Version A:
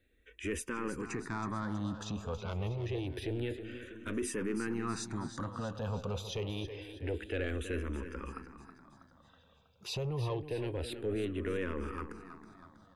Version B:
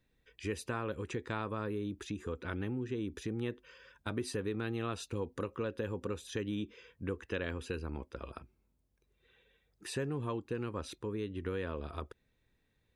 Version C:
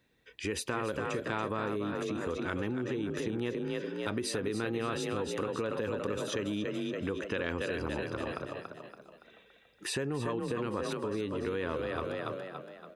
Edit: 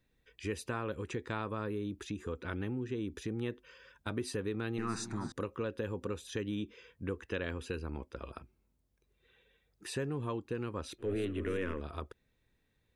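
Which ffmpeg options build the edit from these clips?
-filter_complex "[0:a]asplit=2[a][b];[1:a]asplit=3[c][d][e];[c]atrim=end=4.782[f];[a]atrim=start=4.778:end=5.322[g];[d]atrim=start=5.318:end=11.08[h];[b]atrim=start=10.98:end=11.83[i];[e]atrim=start=11.73[j];[f][g]acrossfade=d=0.004:c1=hsin:c2=hsin[k];[k][h]acrossfade=d=0.004:c1=hsin:c2=hsin[l];[l][i]acrossfade=d=0.1:c1=tri:c2=tri[m];[m][j]acrossfade=d=0.1:c1=tri:c2=tri"

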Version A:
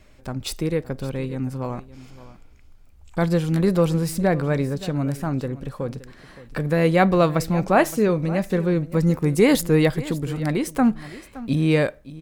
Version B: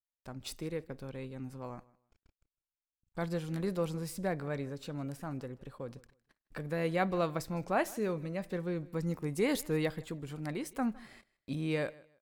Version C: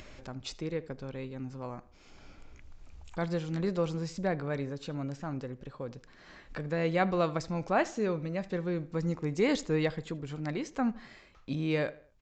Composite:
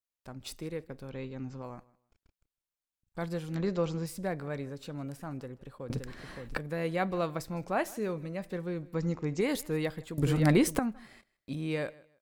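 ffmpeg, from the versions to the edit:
-filter_complex "[2:a]asplit=3[a][b][c];[0:a]asplit=2[d][e];[1:a]asplit=6[f][g][h][i][j][k];[f]atrim=end=1.112[l];[a]atrim=start=1.108:end=1.622[m];[g]atrim=start=1.618:end=3.552[n];[b]atrim=start=3.548:end=4.062[o];[h]atrim=start=4.058:end=5.902[p];[d]atrim=start=5.898:end=6.572[q];[i]atrim=start=6.568:end=8.942[r];[c]atrim=start=8.938:end=9.412[s];[j]atrim=start=9.408:end=10.182[t];[e]atrim=start=10.178:end=10.792[u];[k]atrim=start=10.788[v];[l][m]acrossfade=d=0.004:c1=hsin:c2=hsin[w];[w][n]acrossfade=d=0.004:c1=hsin:c2=hsin[x];[x][o]acrossfade=d=0.004:c1=hsin:c2=hsin[y];[y][p]acrossfade=d=0.004:c1=hsin:c2=hsin[z];[z][q]acrossfade=d=0.004:c1=hsin:c2=hsin[aa];[aa][r]acrossfade=d=0.004:c1=hsin:c2=hsin[ab];[ab][s]acrossfade=d=0.004:c1=hsin:c2=hsin[ac];[ac][t]acrossfade=d=0.004:c1=hsin:c2=hsin[ad];[ad][u]acrossfade=d=0.004:c1=hsin:c2=hsin[ae];[ae][v]acrossfade=d=0.004:c1=hsin:c2=hsin"

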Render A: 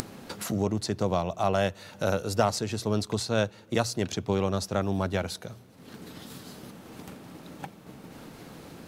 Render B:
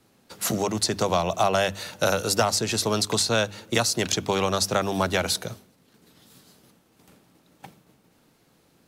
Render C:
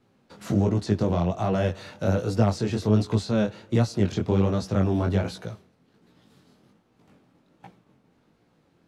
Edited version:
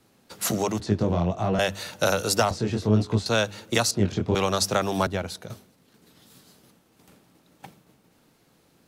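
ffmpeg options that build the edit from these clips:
-filter_complex "[2:a]asplit=3[a][b][c];[1:a]asplit=5[d][e][f][g][h];[d]atrim=end=0.802[i];[a]atrim=start=0.798:end=1.592[j];[e]atrim=start=1.588:end=2.512[k];[b]atrim=start=2.508:end=3.262[l];[f]atrim=start=3.258:end=3.912[m];[c]atrim=start=3.908:end=4.352[n];[g]atrim=start=4.348:end=5.072[o];[0:a]atrim=start=5.068:end=5.502[p];[h]atrim=start=5.498[q];[i][j]acrossfade=d=0.004:c1=hsin:c2=hsin[r];[r][k]acrossfade=d=0.004:c1=hsin:c2=hsin[s];[s][l]acrossfade=d=0.004:c1=hsin:c2=hsin[t];[t][m]acrossfade=d=0.004:c1=hsin:c2=hsin[u];[u][n]acrossfade=d=0.004:c1=hsin:c2=hsin[v];[v][o]acrossfade=d=0.004:c1=hsin:c2=hsin[w];[w][p]acrossfade=d=0.004:c1=hsin:c2=hsin[x];[x][q]acrossfade=d=0.004:c1=hsin:c2=hsin"

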